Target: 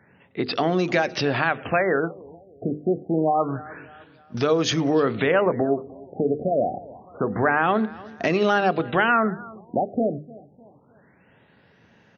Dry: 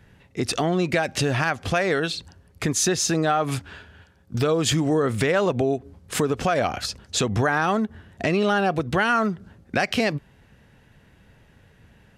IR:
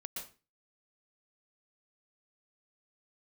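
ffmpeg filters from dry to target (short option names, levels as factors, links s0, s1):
-filter_complex "[0:a]highpass=180,bandreject=f=50:t=h:w=6,bandreject=f=100:t=h:w=6,bandreject=f=150:t=h:w=6,bandreject=f=200:t=h:w=6,bandreject=f=250:t=h:w=6,bandreject=f=300:t=h:w=6,bandreject=f=350:t=h:w=6,bandreject=f=400:t=h:w=6,bandreject=f=450:t=h:w=6,bandreject=f=500:t=h:w=6,aecho=1:1:303|606|909:0.0891|0.0374|0.0157,asplit=2[s0][s1];[1:a]atrim=start_sample=2205,afade=t=out:st=0.16:d=0.01,atrim=end_sample=7497,lowpass=2500[s2];[s1][s2]afir=irnorm=-1:irlink=0,volume=0.531[s3];[s0][s3]amix=inputs=2:normalize=0,afftfilt=real='re*lt(b*sr/1024,730*pow(6800/730,0.5+0.5*sin(2*PI*0.27*pts/sr)))':imag='im*lt(b*sr/1024,730*pow(6800/730,0.5+0.5*sin(2*PI*0.27*pts/sr)))':win_size=1024:overlap=0.75"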